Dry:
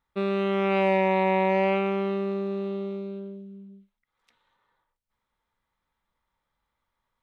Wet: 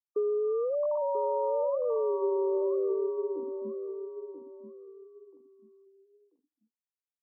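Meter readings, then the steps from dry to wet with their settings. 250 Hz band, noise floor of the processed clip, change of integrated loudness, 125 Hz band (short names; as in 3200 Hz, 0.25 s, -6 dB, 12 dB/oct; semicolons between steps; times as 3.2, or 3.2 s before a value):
-11.5 dB, under -85 dBFS, -5.0 dB, n/a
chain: sine-wave speech; HPF 190 Hz 12 dB/oct; notches 50/100/150/200/250/300/350/400 Hz; gate -41 dBFS, range -39 dB; bell 300 Hz +6.5 dB 1.2 oct; compressor, threshold -27 dBFS, peak gain reduction 8 dB; brick-wall FIR low-pass 1200 Hz; feedback echo 0.987 s, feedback 27%, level -8 dB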